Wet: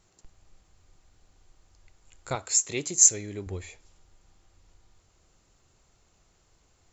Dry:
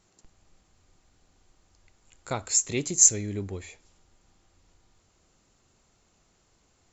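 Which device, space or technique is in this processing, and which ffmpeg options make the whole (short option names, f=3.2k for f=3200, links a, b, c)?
low shelf boost with a cut just above: -filter_complex "[0:a]asettb=1/sr,asplit=3[a][b][c];[a]atrim=end=2.354[d];[b]atrim=start=2.35:end=3.47,asetpts=PTS-STARTPTS,afade=t=in:d=0.004:c=qsin,afade=t=out:st=1.116:d=0.004:c=qsin,highpass=f=260:p=1[e];[c]atrim=start=3.466[f];[d][e]acrossfade=d=0.004:c1=hsin:c2=qsin[g];[g][f]acrossfade=d=0.004:c1=qsin:c2=hsin,lowshelf=f=83:g=6,equalizer=f=230:t=o:w=0.6:g=-5"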